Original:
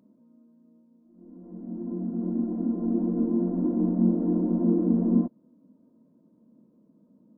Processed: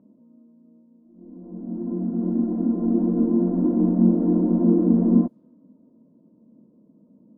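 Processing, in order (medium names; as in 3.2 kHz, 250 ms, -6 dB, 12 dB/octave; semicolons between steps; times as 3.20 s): level-controlled noise filter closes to 840 Hz, open at -21.5 dBFS; trim +5 dB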